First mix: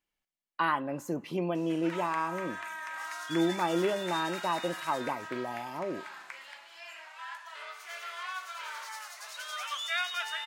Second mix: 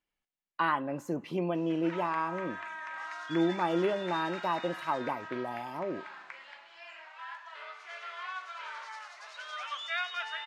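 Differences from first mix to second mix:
background: add distance through air 96 m; master: add treble shelf 6 kHz -8.5 dB

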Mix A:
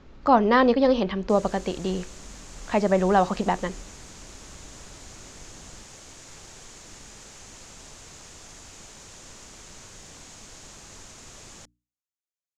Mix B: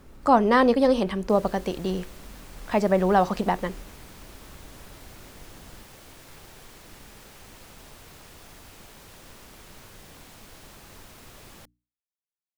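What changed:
speech: remove low-pass 4.3 kHz 24 dB/octave; master: remove resonant low-pass 6.9 kHz, resonance Q 4.1

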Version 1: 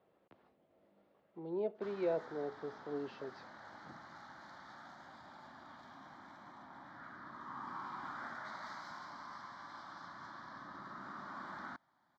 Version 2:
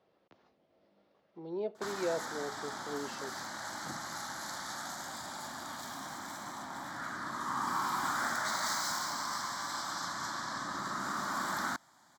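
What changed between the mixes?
background +10.0 dB; master: remove distance through air 280 m

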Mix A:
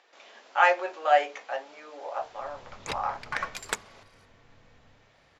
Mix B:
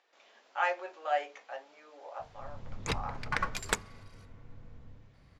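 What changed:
speech -9.5 dB; background: add bass shelf 210 Hz +11.5 dB

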